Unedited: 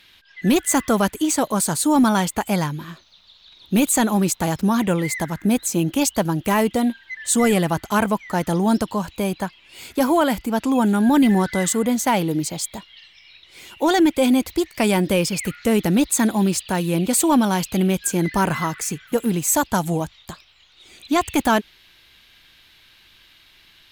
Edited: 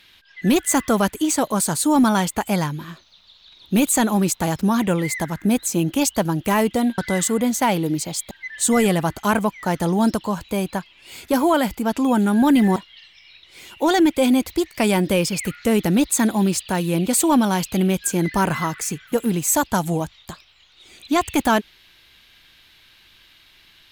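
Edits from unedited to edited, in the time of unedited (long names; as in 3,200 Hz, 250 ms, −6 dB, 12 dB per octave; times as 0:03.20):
0:11.43–0:12.76: move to 0:06.98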